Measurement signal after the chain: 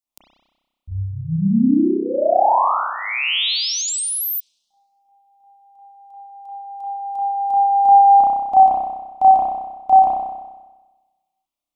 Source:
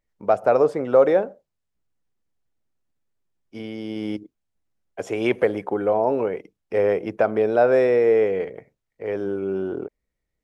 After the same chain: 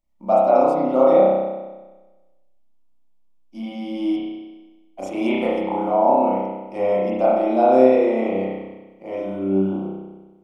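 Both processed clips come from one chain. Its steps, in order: static phaser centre 440 Hz, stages 6; spring tank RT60 1.2 s, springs 31 ms, chirp 70 ms, DRR -8 dB; trim -1 dB

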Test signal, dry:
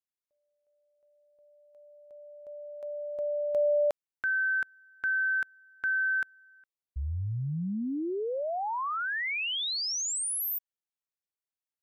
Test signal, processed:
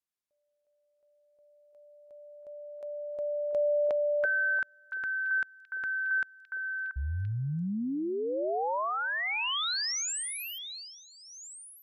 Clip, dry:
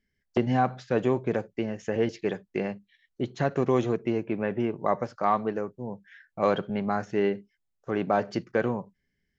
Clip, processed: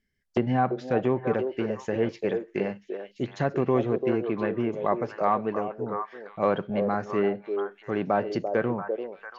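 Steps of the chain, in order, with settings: low-pass that closes with the level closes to 2.6 kHz, closed at -20.5 dBFS; repeats whose band climbs or falls 341 ms, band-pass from 470 Hz, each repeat 1.4 oct, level -3 dB

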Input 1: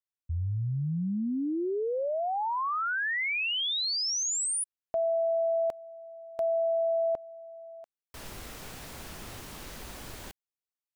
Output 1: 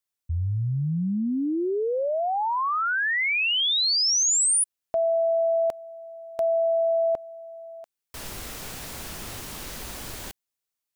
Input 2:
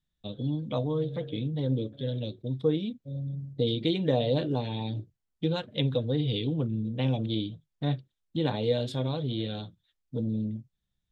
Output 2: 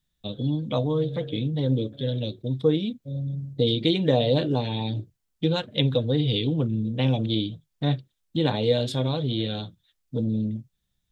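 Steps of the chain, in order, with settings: treble shelf 3.7 kHz +5 dB; trim +4.5 dB

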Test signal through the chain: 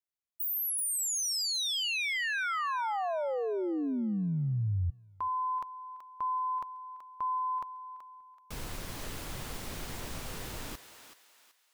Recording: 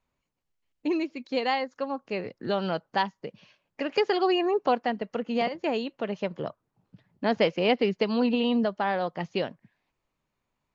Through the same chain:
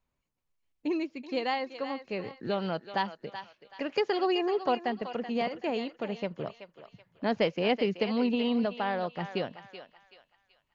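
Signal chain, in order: bass shelf 130 Hz +5 dB; on a send: thinning echo 379 ms, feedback 39%, high-pass 790 Hz, level -9 dB; on the sum: trim -4 dB

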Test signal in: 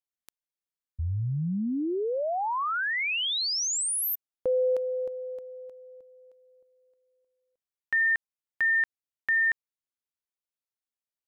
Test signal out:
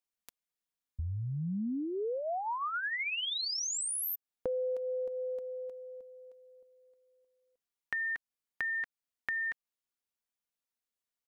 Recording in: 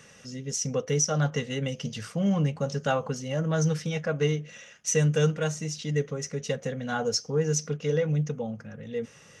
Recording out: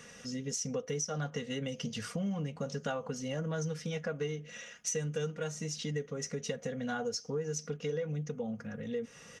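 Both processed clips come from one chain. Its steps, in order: comb 4.2 ms, depth 37%; compression 4:1, threshold -34 dBFS

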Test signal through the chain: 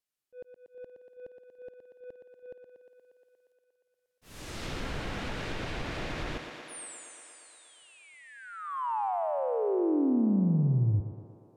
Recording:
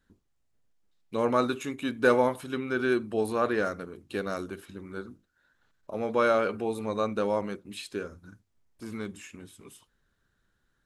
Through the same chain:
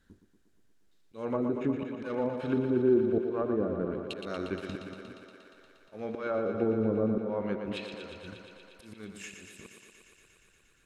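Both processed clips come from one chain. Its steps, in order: waveshaping leveller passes 1; peaking EQ 950 Hz -3.5 dB 1 oct; in parallel at +1.5 dB: compression 10:1, threshold -36 dBFS; on the sum: slow attack 561 ms; low-pass that closes with the level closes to 390 Hz, closed at -24 dBFS; on a send: thinning echo 118 ms, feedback 82%, high-pass 180 Hz, level -7 dB

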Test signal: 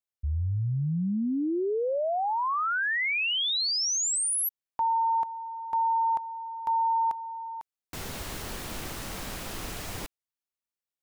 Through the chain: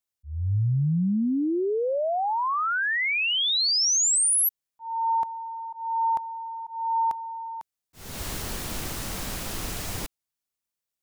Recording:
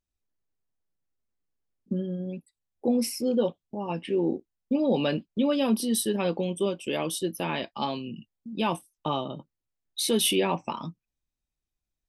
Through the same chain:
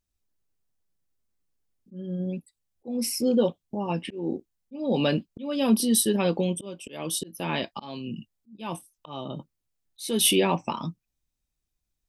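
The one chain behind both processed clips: tone controls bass +3 dB, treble +4 dB; slow attack 321 ms; trim +2 dB

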